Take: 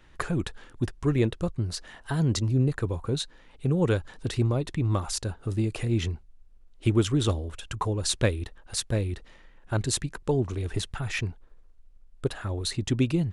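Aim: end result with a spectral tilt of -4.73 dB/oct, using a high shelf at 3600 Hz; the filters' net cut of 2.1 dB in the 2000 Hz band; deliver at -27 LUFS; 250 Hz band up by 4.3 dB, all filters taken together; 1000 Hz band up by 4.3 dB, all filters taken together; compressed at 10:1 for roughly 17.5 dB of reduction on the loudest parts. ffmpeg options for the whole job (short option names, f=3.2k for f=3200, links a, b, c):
-af "equalizer=f=250:t=o:g=5.5,equalizer=f=1k:t=o:g=6,equalizer=f=2k:t=o:g=-7.5,highshelf=f=3.6k:g=8,acompressor=threshold=-33dB:ratio=10,volume=11.5dB"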